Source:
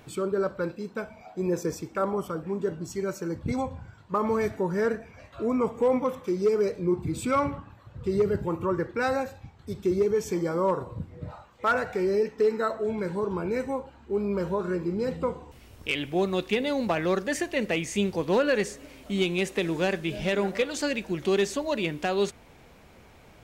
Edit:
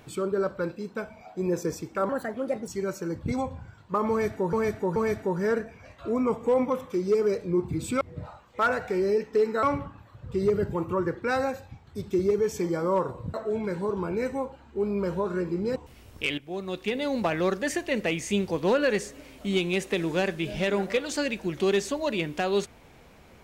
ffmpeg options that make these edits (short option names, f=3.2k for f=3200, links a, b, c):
-filter_complex "[0:a]asplit=10[a][b][c][d][e][f][g][h][i][j];[a]atrim=end=2.094[k];[b]atrim=start=2.09:end=2.88,asetpts=PTS-STARTPTS,asetrate=59094,aresample=44100,atrim=end_sample=25999,asetpts=PTS-STARTPTS[l];[c]atrim=start=2.876:end=4.732[m];[d]atrim=start=4.298:end=4.732[n];[e]atrim=start=4.298:end=7.352[o];[f]atrim=start=11.058:end=12.682[p];[g]atrim=start=7.348:end=11.062[q];[h]atrim=start=12.678:end=15.102[r];[i]atrim=start=15.408:end=16.03,asetpts=PTS-STARTPTS,afade=t=out:st=0.618:d=0.004:c=hsin:silence=0.188365[s];[j]atrim=start=16.03,asetpts=PTS-STARTPTS,afade=t=in:d=0.8:silence=0.188365[t];[k][l]acrossfade=d=0.004:c1=hsin:c2=hsin[u];[u][m]acrossfade=d=0.004:c1=hsin:c2=hsin[v];[v][n]acrossfade=d=0.004:c1=hsin:c2=hsin[w];[w][o]acrossfade=d=0.004:c1=hsin:c2=hsin[x];[x][p]acrossfade=d=0.004:c1=hsin:c2=hsin[y];[y][q]acrossfade=d=0.004:c1=hsin:c2=hsin[z];[z][r]acrossfade=d=0.004:c1=hsin:c2=hsin[aa];[s][t]concat=n=2:v=0:a=1[ab];[aa][ab]acrossfade=d=0.004:c1=hsin:c2=hsin"